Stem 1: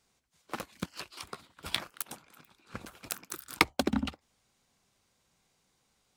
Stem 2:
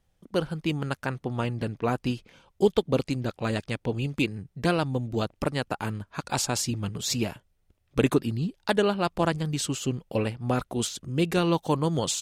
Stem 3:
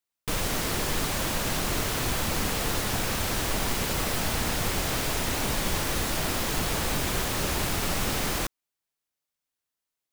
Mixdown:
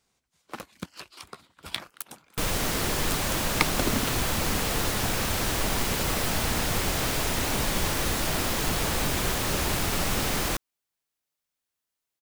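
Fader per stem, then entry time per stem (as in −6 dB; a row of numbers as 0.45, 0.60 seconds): −0.5 dB, muted, +1.0 dB; 0.00 s, muted, 2.10 s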